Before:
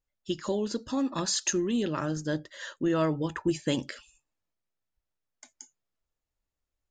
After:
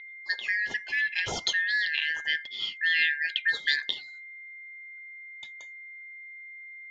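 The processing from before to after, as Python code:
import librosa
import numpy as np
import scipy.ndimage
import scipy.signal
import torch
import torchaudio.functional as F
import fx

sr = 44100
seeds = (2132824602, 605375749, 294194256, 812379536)

y = fx.band_shuffle(x, sr, order='4123')
y = y + 10.0 ** (-43.0 / 20.0) * np.sin(2.0 * np.pi * 2100.0 * np.arange(len(y)) / sr)
y = fx.lowpass_res(y, sr, hz=3700.0, q=7.6)
y = y * 10.0 ** (-2.0 / 20.0)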